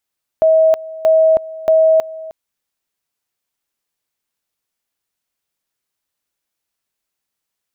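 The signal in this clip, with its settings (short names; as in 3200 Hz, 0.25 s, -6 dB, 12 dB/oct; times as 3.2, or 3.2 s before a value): two-level tone 640 Hz -7.5 dBFS, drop 19 dB, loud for 0.32 s, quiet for 0.31 s, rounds 3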